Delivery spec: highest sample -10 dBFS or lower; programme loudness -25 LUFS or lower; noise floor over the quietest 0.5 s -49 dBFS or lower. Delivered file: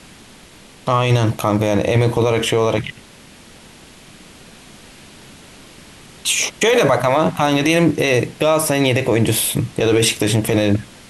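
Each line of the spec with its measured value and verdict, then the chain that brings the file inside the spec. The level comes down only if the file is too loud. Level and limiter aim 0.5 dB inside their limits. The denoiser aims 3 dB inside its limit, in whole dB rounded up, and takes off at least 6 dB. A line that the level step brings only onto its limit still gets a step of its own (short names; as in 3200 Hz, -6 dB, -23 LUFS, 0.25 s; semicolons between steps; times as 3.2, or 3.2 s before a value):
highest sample -4.5 dBFS: fail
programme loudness -16.5 LUFS: fail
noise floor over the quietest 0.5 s -43 dBFS: fail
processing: gain -9 dB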